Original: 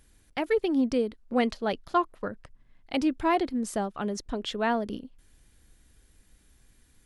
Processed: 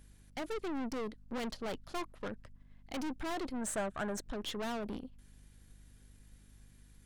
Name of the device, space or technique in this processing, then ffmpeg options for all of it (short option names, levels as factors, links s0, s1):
valve amplifier with mains hum: -filter_complex "[0:a]aeval=exprs='(tanh(63.1*val(0)+0.55)-tanh(0.55))/63.1':c=same,aeval=exprs='val(0)+0.00112*(sin(2*PI*50*n/s)+sin(2*PI*2*50*n/s)/2+sin(2*PI*3*50*n/s)/3+sin(2*PI*4*50*n/s)/4+sin(2*PI*5*50*n/s)/5)':c=same,asettb=1/sr,asplit=3[s0][s1][s2];[s0]atrim=end=3.614[s3];[s1]atrim=start=3.61:end=4.24,asetpts=PTS-STARTPTS,afade=t=in:d=0.004:c=qsin,afade=t=out:st=0.626:d=0.004:c=qsin,equalizer=f=630:t=o:w=0.33:g=8,equalizer=f=1600:t=o:w=0.33:g=11,equalizer=f=5000:t=o:w=0.33:g=-8,equalizer=f=8000:t=o:w=0.33:g=9[s4];[s2]atrim=start=4.236[s5];[s3][s4]acrossfade=d=0.004:c1=hsin:c2=qsin[s6];[s6][s5]acrossfade=d=0.004:c1=qsin:c2=hsin"